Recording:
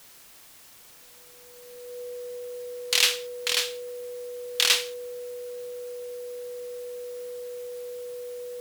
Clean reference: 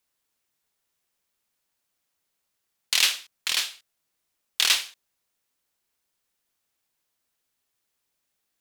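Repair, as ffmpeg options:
-af "bandreject=f=490:w=30,afwtdn=0.0028"

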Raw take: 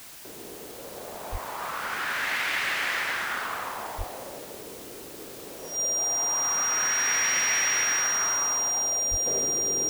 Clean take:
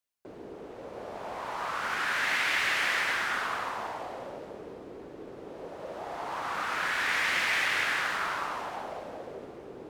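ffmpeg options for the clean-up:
-filter_complex "[0:a]bandreject=f=5700:w=30,asplit=3[s0][s1][s2];[s0]afade=t=out:st=1.31:d=0.02[s3];[s1]highpass=f=140:w=0.5412,highpass=f=140:w=1.3066,afade=t=in:st=1.31:d=0.02,afade=t=out:st=1.43:d=0.02[s4];[s2]afade=t=in:st=1.43:d=0.02[s5];[s3][s4][s5]amix=inputs=3:normalize=0,asplit=3[s6][s7][s8];[s6]afade=t=out:st=3.97:d=0.02[s9];[s7]highpass=f=140:w=0.5412,highpass=f=140:w=1.3066,afade=t=in:st=3.97:d=0.02,afade=t=out:st=4.09:d=0.02[s10];[s8]afade=t=in:st=4.09:d=0.02[s11];[s9][s10][s11]amix=inputs=3:normalize=0,asplit=3[s12][s13][s14];[s12]afade=t=out:st=9.1:d=0.02[s15];[s13]highpass=f=140:w=0.5412,highpass=f=140:w=1.3066,afade=t=in:st=9.1:d=0.02,afade=t=out:st=9.22:d=0.02[s16];[s14]afade=t=in:st=9.22:d=0.02[s17];[s15][s16][s17]amix=inputs=3:normalize=0,afwtdn=0.0056,asetnsamples=n=441:p=0,asendcmd='9.26 volume volume -8.5dB',volume=1"

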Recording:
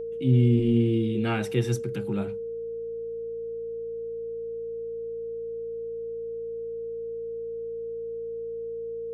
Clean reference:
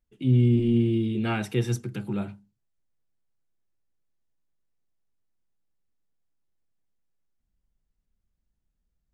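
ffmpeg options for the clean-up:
-af "bandreject=f=56.1:t=h:w=4,bandreject=f=112.2:t=h:w=4,bandreject=f=168.3:t=h:w=4,bandreject=f=224.4:t=h:w=4,bandreject=f=460:w=30,asetnsamples=n=441:p=0,asendcmd='2.37 volume volume 5.5dB',volume=1"

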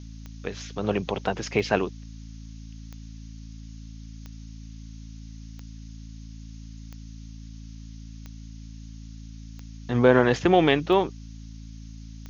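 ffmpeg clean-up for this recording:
-af "adeclick=t=4,bandreject=f=55:t=h:w=4,bandreject=f=110:t=h:w=4,bandreject=f=165:t=h:w=4,bandreject=f=220:t=h:w=4,bandreject=f=275:t=h:w=4,afftdn=nr=29:nf=-41"

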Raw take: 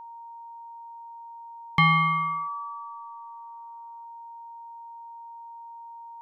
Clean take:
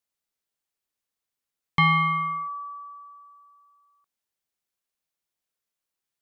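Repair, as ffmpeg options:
-af "bandreject=f=930:w=30"

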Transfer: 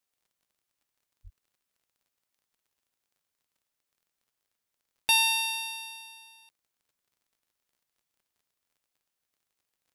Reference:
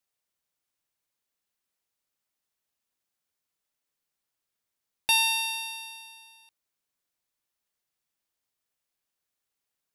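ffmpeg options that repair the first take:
-filter_complex "[0:a]adeclick=t=4,asplit=3[s0][s1][s2];[s0]afade=t=out:st=1.23:d=0.02[s3];[s1]highpass=f=140:w=0.5412,highpass=f=140:w=1.3066,afade=t=in:st=1.23:d=0.02,afade=t=out:st=1.35:d=0.02[s4];[s2]afade=t=in:st=1.35:d=0.02[s5];[s3][s4][s5]amix=inputs=3:normalize=0"

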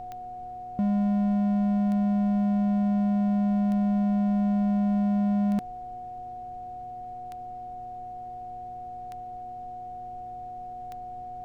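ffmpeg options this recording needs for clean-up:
-af "adeclick=t=4,bandreject=f=120.3:t=h:w=4,bandreject=f=240.6:t=h:w=4,bandreject=f=360.9:t=h:w=4,bandreject=f=481.2:t=h:w=4,bandreject=f=730:w=30,agate=range=0.0891:threshold=0.0282"

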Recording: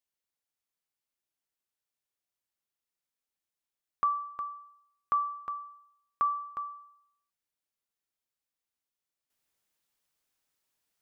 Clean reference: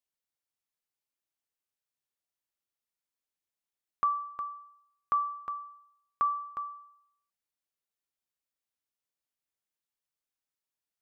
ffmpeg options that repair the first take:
-af "asetnsamples=n=441:p=0,asendcmd='9.3 volume volume -10dB',volume=1"

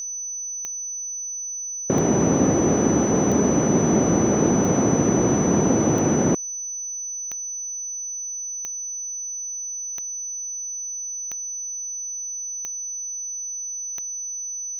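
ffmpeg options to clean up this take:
-af "adeclick=t=4,bandreject=f=6000:w=30"

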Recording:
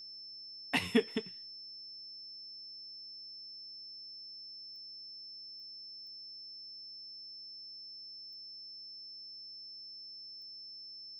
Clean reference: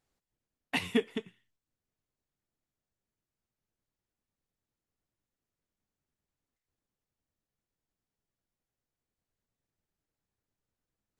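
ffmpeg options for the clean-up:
-af "adeclick=t=4,bandreject=f=112.6:t=h:w=4,bandreject=f=225.2:t=h:w=4,bandreject=f=337.8:t=h:w=4,bandreject=f=450.4:t=h:w=4,bandreject=f=5300:w=30"

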